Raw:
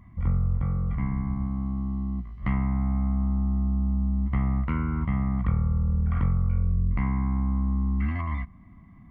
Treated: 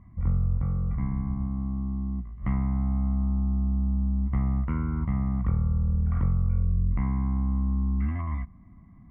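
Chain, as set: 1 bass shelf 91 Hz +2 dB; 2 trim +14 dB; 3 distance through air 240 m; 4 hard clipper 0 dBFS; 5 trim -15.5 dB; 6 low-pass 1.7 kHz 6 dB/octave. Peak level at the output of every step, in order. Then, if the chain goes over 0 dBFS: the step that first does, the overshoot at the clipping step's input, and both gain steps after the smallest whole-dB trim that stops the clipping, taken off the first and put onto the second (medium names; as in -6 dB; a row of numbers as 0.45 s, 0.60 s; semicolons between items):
-11.0 dBFS, +3.0 dBFS, +3.0 dBFS, 0.0 dBFS, -15.5 dBFS, -15.5 dBFS; step 2, 3.0 dB; step 2 +11 dB, step 5 -12.5 dB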